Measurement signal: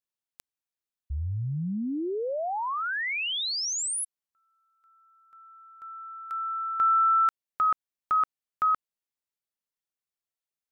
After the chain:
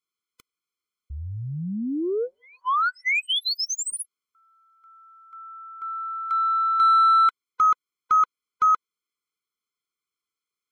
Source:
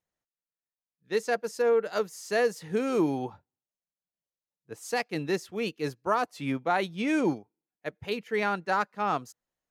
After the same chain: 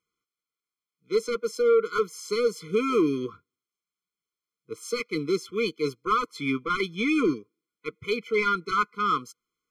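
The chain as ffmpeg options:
ffmpeg -i in.wav -filter_complex "[0:a]asplit=2[link_01][link_02];[link_02]highpass=frequency=720:poles=1,volume=15dB,asoftclip=type=tanh:threshold=-13dB[link_03];[link_01][link_03]amix=inputs=2:normalize=0,lowpass=frequency=3700:poles=1,volume=-6dB,afftfilt=real='re*eq(mod(floor(b*sr/1024/500),2),0)':imag='im*eq(mod(floor(b*sr/1024/500),2),0)':win_size=1024:overlap=0.75,volume=1.5dB" out.wav

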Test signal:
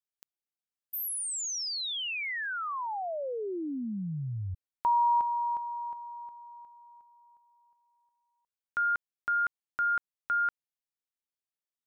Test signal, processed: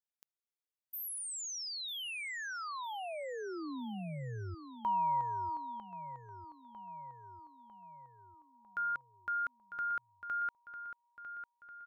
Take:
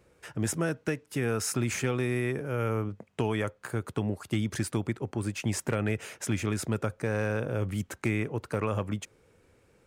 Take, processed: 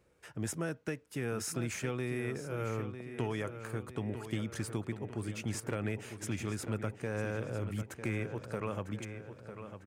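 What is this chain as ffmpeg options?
ffmpeg -i in.wav -filter_complex "[0:a]asplit=2[link_01][link_02];[link_02]adelay=950,lowpass=frequency=4800:poles=1,volume=-9.5dB,asplit=2[link_03][link_04];[link_04]adelay=950,lowpass=frequency=4800:poles=1,volume=0.54,asplit=2[link_05][link_06];[link_06]adelay=950,lowpass=frequency=4800:poles=1,volume=0.54,asplit=2[link_07][link_08];[link_08]adelay=950,lowpass=frequency=4800:poles=1,volume=0.54,asplit=2[link_09][link_10];[link_10]adelay=950,lowpass=frequency=4800:poles=1,volume=0.54,asplit=2[link_11][link_12];[link_12]adelay=950,lowpass=frequency=4800:poles=1,volume=0.54[link_13];[link_01][link_03][link_05][link_07][link_09][link_11][link_13]amix=inputs=7:normalize=0,volume=-7dB" out.wav

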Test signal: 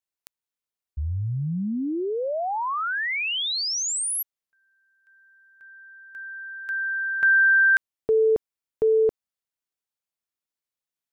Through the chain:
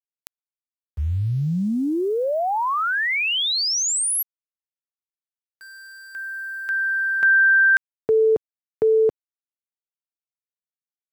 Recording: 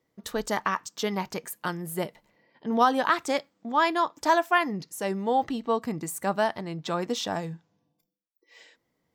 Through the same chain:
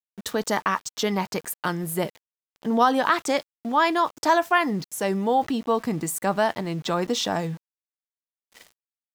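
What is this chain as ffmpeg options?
ffmpeg -i in.wav -filter_complex "[0:a]highpass=frequency=61:width=0.5412,highpass=frequency=61:width=1.3066,asplit=2[link_01][link_02];[link_02]acompressor=threshold=-28dB:ratio=6:attack=3.3:release=32:knee=1,volume=-0.5dB[link_03];[link_01][link_03]amix=inputs=2:normalize=0,aeval=exprs='val(0)*gte(abs(val(0)),0.00794)':channel_layout=same" out.wav

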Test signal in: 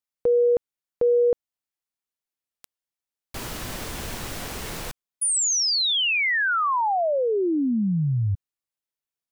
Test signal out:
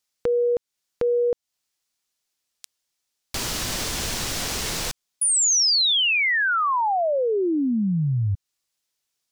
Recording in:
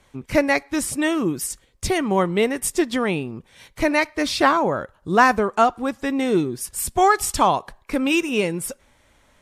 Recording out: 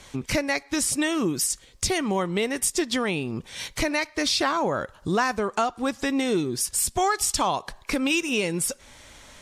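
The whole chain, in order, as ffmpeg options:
ffmpeg -i in.wav -af "equalizer=frequency=5500:width_type=o:width=1.9:gain=9,acompressor=threshold=-30dB:ratio=3:attack=1.5:release=448:knee=6:detection=peak,aeval=exprs='0.133*(abs(mod(val(0)/0.133+3,4)-2)-1)':channel_layout=same,volume=7.5dB" out.wav

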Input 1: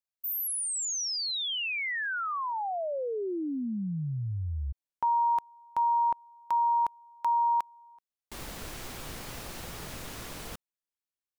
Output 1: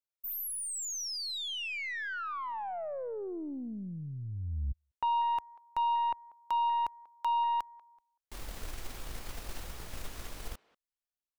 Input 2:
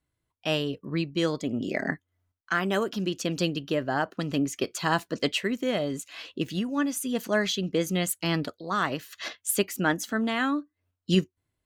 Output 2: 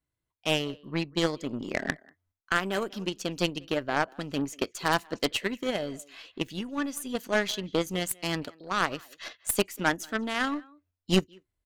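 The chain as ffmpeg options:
ffmpeg -i in.wav -filter_complex "[0:a]asubboost=boost=4:cutoff=63,asplit=2[link_01][link_02];[link_02]adelay=190,highpass=300,lowpass=3400,asoftclip=type=hard:threshold=-20dB,volume=-19dB[link_03];[link_01][link_03]amix=inputs=2:normalize=0,aeval=exprs='0.282*(cos(1*acos(clip(val(0)/0.282,-1,1)))-cos(1*PI/2))+0.0112*(cos(2*acos(clip(val(0)/0.282,-1,1)))-cos(2*PI/2))+0.0562*(cos(6*acos(clip(val(0)/0.282,-1,1)))-cos(6*PI/2))+0.02*(cos(7*acos(clip(val(0)/0.282,-1,1)))-cos(7*PI/2))+0.0398*(cos(8*acos(clip(val(0)/0.282,-1,1)))-cos(8*PI/2))':channel_layout=same" out.wav

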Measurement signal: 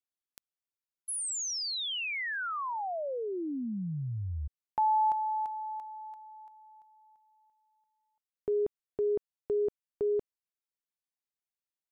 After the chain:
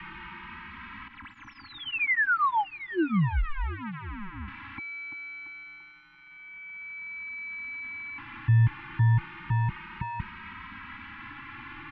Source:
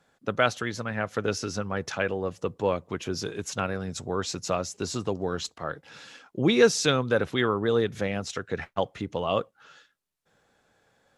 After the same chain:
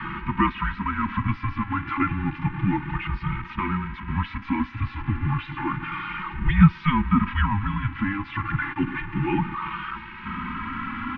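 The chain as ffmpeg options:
ffmpeg -i in.wav -filter_complex "[0:a]aeval=exprs='val(0)+0.5*0.0631*sgn(val(0))':channel_layout=same,asuperstop=centerf=860:order=20:qfactor=1.8,highpass=frequency=290:width_type=q:width=0.5412,highpass=frequency=290:width_type=q:width=1.307,lowpass=frequency=2700:width_type=q:width=0.5176,lowpass=frequency=2700:width_type=q:width=0.7071,lowpass=frequency=2700:width_type=q:width=1.932,afreqshift=-300,asplit=2[link_01][link_02];[link_02]adelay=2.8,afreqshift=0.31[link_03];[link_01][link_03]amix=inputs=2:normalize=1,volume=5dB" out.wav

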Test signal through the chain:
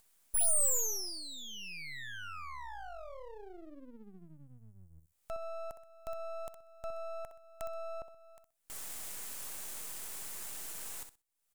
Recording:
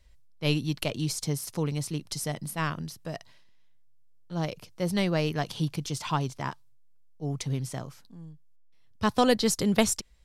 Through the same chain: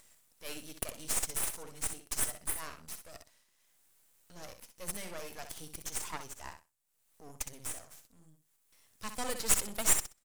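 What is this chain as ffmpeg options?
ffmpeg -i in.wav -af "highpass=frequency=720:poles=1,highshelf=frequency=5800:width_type=q:width=1.5:gain=12,acompressor=mode=upward:threshold=-42dB:ratio=2.5,aecho=1:1:63|126|189:0.376|0.0677|0.0122,aeval=exprs='max(val(0),0)':channel_layout=same,volume=-5dB" out.wav

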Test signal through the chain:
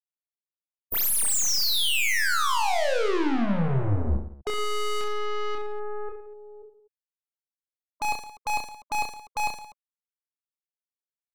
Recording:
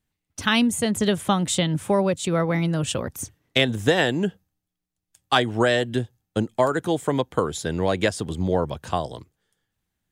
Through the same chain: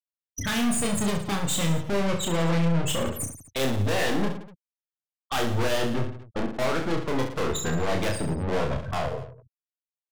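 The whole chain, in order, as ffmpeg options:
ffmpeg -i in.wav -filter_complex "[0:a]afftfilt=real='re*gte(hypot(re,im),0.0631)':imag='im*gte(hypot(re,im),0.0631)':win_size=1024:overlap=0.75,aeval=exprs='(tanh(56.2*val(0)+0.4)-tanh(0.4))/56.2':channel_layout=same,asplit=2[link_01][link_02];[link_02]aecho=0:1:30|67.5|114.4|173|246.2:0.631|0.398|0.251|0.158|0.1[link_03];[link_01][link_03]amix=inputs=2:normalize=0,volume=8.5dB" out.wav

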